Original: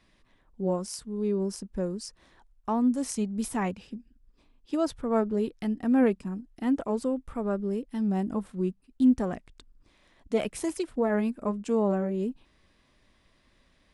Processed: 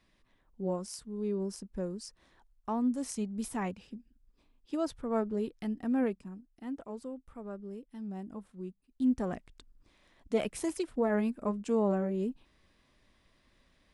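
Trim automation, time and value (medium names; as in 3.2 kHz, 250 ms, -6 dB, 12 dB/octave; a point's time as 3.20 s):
5.82 s -5.5 dB
6.54 s -13 dB
8.69 s -13 dB
9.33 s -3 dB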